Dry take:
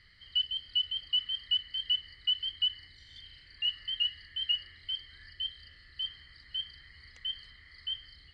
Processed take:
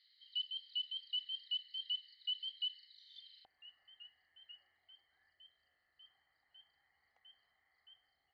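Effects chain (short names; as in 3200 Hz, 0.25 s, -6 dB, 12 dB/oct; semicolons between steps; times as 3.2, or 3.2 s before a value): band-pass 3800 Hz, Q 9.2, from 3.45 s 770 Hz; gain +3.5 dB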